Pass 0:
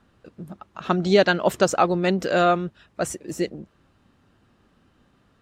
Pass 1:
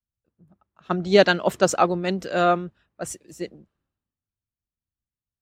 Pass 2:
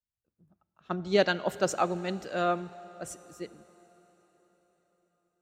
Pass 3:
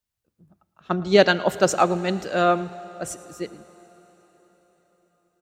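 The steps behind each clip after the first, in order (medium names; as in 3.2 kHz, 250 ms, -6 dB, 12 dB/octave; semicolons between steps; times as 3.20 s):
three bands expanded up and down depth 100%; trim -3.5 dB
feedback comb 110 Hz, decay 1.6 s, mix 40%; on a send at -17.5 dB: reverberation RT60 4.9 s, pre-delay 7 ms; on the sum: trim -4 dB
delay 112 ms -21.5 dB; trim +8.5 dB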